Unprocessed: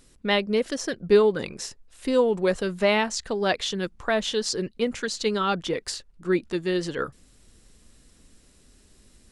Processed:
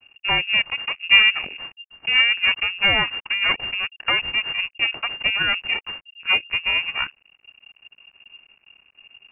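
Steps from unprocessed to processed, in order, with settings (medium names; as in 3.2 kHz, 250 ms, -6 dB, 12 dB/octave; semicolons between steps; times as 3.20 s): half-wave rectifier; frequency inversion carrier 2.8 kHz; trim +5.5 dB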